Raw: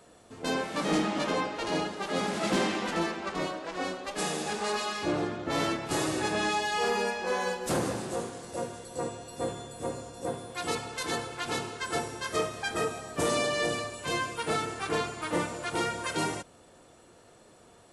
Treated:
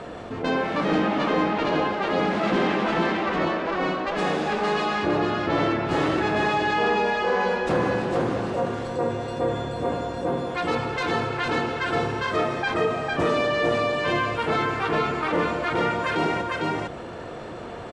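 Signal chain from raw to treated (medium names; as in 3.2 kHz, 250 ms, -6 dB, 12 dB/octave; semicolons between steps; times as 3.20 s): low-pass 2.7 kHz 12 dB/octave; delay 453 ms -4 dB; level flattener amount 50%; trim +3.5 dB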